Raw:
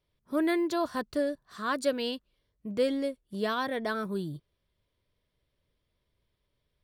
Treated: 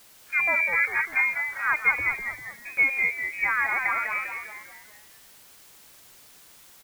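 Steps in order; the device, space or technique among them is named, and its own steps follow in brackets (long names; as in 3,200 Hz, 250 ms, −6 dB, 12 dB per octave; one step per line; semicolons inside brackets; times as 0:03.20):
scrambled radio voice (band-pass filter 390–2,800 Hz; voice inversion scrambler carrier 2,700 Hz; white noise bed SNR 24 dB)
0:02.13–0:02.77: notch filter 2,900 Hz, Q 7.9
echo with shifted repeats 199 ms, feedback 45%, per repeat −110 Hz, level −6 dB
level +6.5 dB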